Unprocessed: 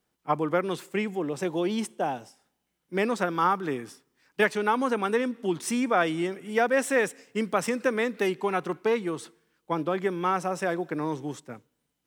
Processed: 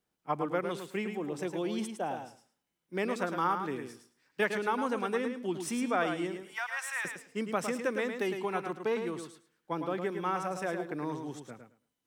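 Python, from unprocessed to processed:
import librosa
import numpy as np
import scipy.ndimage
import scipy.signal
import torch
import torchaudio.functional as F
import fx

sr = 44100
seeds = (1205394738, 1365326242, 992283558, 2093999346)

y = fx.steep_highpass(x, sr, hz=880.0, slope=36, at=(6.43, 7.05))
y = fx.echo_feedback(y, sr, ms=108, feedback_pct=16, wet_db=-7.0)
y = y * librosa.db_to_amplitude(-6.5)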